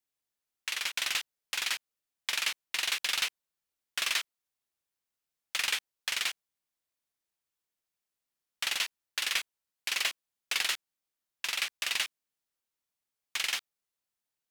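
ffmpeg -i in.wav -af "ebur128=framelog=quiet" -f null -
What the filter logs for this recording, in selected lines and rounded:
Integrated loudness:
  I:         -31.8 LUFS
  Threshold: -42.0 LUFS
Loudness range:
  LRA:         4.2 LU
  Threshold: -53.8 LUFS
  LRA low:   -36.2 LUFS
  LRA high:  -32.0 LUFS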